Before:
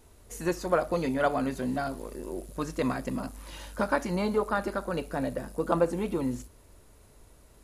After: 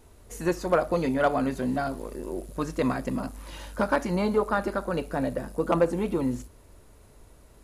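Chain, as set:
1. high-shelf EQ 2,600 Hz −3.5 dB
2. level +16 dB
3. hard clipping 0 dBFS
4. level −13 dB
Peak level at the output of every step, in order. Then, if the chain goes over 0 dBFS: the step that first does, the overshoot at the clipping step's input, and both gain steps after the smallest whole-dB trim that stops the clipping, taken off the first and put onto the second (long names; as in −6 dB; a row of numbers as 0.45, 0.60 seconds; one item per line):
−11.0, +5.0, 0.0, −13.0 dBFS
step 2, 5.0 dB
step 2 +11 dB, step 4 −8 dB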